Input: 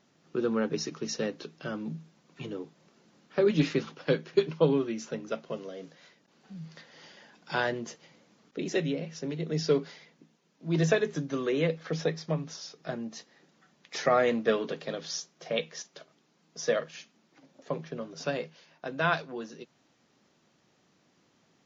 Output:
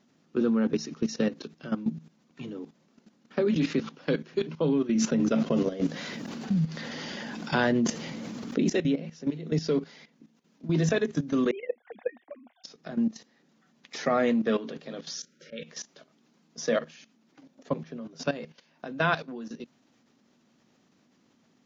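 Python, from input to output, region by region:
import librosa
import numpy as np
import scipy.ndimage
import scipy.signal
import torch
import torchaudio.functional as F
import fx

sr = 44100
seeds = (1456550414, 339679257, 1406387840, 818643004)

y = fx.chain(x, sr, fx.low_shelf(hz=210.0, db=6.5),
    fx.env_flatten(amount_pct=70), at=(4.95, 8.7))
y = fx.chain(y, sr, fx.sine_speech(),
    fx.cabinet(low_hz=380.0, low_slope=12, high_hz=3000.0, hz=(420.0, 740.0, 1300.0, 2000.0), db=(-9, 9, -6, 6)),
    fx.level_steps(step_db=14), at=(11.51, 12.64))
y = fx.chain(y, sr, fx.auto_swell(attack_ms=132.0),
    fx.brickwall_bandstop(low_hz=610.0, high_hz=1300.0),
    fx.peak_eq(hz=1200.0, db=8.5, octaves=0.77), at=(15.15, 15.64))
y = fx.peak_eq(y, sr, hz=240.0, db=11.0, octaves=0.44)
y = fx.level_steps(y, sr, step_db=14)
y = y * librosa.db_to_amplitude(4.5)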